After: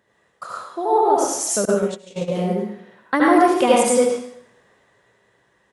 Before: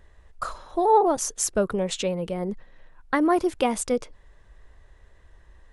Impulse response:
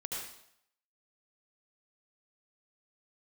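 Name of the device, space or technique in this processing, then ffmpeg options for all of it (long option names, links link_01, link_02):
far laptop microphone: -filter_complex "[1:a]atrim=start_sample=2205[link_01];[0:a][link_01]afir=irnorm=-1:irlink=0,highpass=frequency=140:width=0.5412,highpass=frequency=140:width=1.3066,dynaudnorm=framelen=240:gausssize=11:maxgain=9dB,asettb=1/sr,asplit=3[link_02][link_03][link_04];[link_02]atrim=end=1.654[link_05];[link_03]atrim=start=1.65:end=2.32,asetpts=PTS-STARTPTS,afade=type=in:duration=0.004:curve=qsin,afade=type=out:start_time=0.666:duration=0.004:curve=qsin,agate=range=-31dB:threshold=-18dB:ratio=16:detection=peak[link_06];[link_04]atrim=start=2.316[link_07];[link_05][link_06]acrossfade=duration=0.004:curve1=hsin:curve2=qsin[link_08];[link_08][link_07]acrossfade=duration=0.004:curve1=qsin:curve2=hsin,asplit=2[link_09][link_10];[link_10]adelay=105,volume=-18dB,highshelf=frequency=4000:gain=-2.36[link_11];[link_09][link_11]amix=inputs=2:normalize=0"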